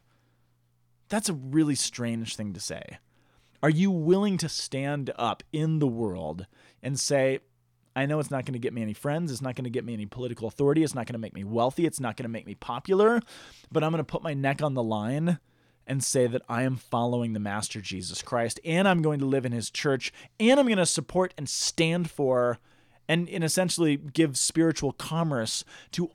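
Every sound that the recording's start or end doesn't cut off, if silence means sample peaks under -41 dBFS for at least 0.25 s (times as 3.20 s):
1.10–2.96 s
3.63–6.44 s
6.83–7.38 s
7.96–15.36 s
15.88–22.55 s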